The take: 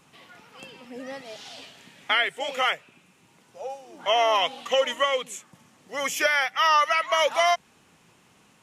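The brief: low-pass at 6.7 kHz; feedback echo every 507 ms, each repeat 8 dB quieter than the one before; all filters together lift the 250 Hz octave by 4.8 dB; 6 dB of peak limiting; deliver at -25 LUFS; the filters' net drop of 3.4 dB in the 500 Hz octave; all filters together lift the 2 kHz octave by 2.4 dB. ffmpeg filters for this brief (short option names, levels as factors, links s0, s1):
-af "lowpass=6700,equalizer=f=250:t=o:g=7,equalizer=f=500:t=o:g=-6,equalizer=f=2000:t=o:g=3,alimiter=limit=0.178:level=0:latency=1,aecho=1:1:507|1014|1521|2028|2535:0.398|0.159|0.0637|0.0255|0.0102,volume=1.19"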